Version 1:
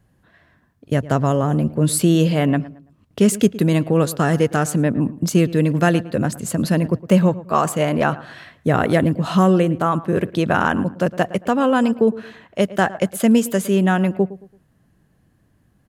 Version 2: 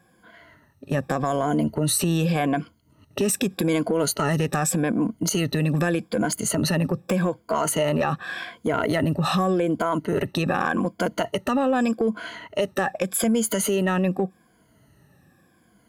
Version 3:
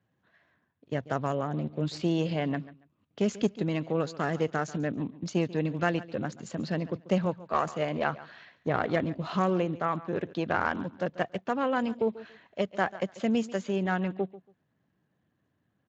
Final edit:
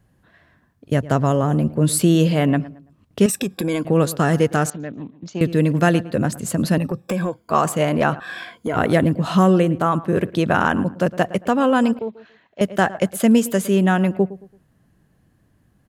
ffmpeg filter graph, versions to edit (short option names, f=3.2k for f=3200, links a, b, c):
-filter_complex "[1:a]asplit=3[a][b][c];[2:a]asplit=2[d][e];[0:a]asplit=6[f][g][h][i][j][k];[f]atrim=end=3.262[l];[a]atrim=start=3.258:end=3.852[m];[g]atrim=start=3.848:end=4.702[n];[d]atrim=start=4.698:end=5.412[o];[h]atrim=start=5.408:end=6.782[p];[b]atrim=start=6.778:end=7.502[q];[i]atrim=start=7.498:end=8.202[r];[c]atrim=start=8.198:end=8.762[s];[j]atrim=start=8.758:end=11.992[t];[e]atrim=start=11.988:end=12.612[u];[k]atrim=start=12.608[v];[l][m]acrossfade=d=0.004:c1=hsin:c2=hsin[w];[w][n]acrossfade=d=0.004:c1=hsin:c2=hsin[x];[x][o]acrossfade=d=0.004:c1=hsin:c2=hsin[y];[y][p]acrossfade=d=0.004:c1=hsin:c2=hsin[z];[z][q]acrossfade=d=0.004:c1=hsin:c2=hsin[aa];[aa][r]acrossfade=d=0.004:c1=hsin:c2=hsin[ab];[ab][s]acrossfade=d=0.004:c1=hsin:c2=hsin[ac];[ac][t]acrossfade=d=0.004:c1=hsin:c2=hsin[ad];[ad][u]acrossfade=d=0.004:c1=hsin:c2=hsin[ae];[ae][v]acrossfade=d=0.004:c1=hsin:c2=hsin"